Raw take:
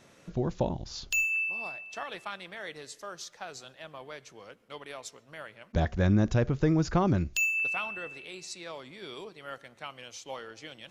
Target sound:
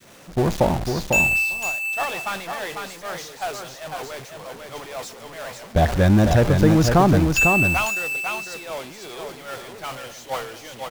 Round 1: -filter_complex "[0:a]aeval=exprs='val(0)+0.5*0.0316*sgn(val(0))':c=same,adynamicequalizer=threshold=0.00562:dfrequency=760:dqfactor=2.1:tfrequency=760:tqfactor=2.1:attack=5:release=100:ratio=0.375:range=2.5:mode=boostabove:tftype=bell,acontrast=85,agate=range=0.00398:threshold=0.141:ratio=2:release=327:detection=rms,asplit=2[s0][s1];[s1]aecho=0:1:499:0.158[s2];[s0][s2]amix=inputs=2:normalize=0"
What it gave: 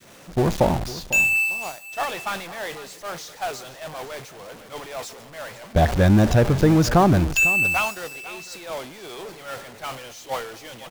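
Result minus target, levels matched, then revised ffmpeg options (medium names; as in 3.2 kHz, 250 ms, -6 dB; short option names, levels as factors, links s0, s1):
echo-to-direct -11 dB
-filter_complex "[0:a]aeval=exprs='val(0)+0.5*0.0316*sgn(val(0))':c=same,adynamicequalizer=threshold=0.00562:dfrequency=760:dqfactor=2.1:tfrequency=760:tqfactor=2.1:attack=5:release=100:ratio=0.375:range=2.5:mode=boostabove:tftype=bell,acontrast=85,agate=range=0.00398:threshold=0.141:ratio=2:release=327:detection=rms,asplit=2[s0][s1];[s1]aecho=0:1:499:0.562[s2];[s0][s2]amix=inputs=2:normalize=0"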